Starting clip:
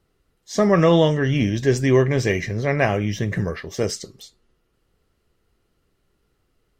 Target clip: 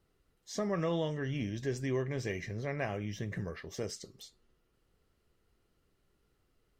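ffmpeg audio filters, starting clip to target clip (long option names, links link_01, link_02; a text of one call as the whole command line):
ffmpeg -i in.wav -af "acompressor=threshold=-44dB:ratio=1.5,volume=-6dB" out.wav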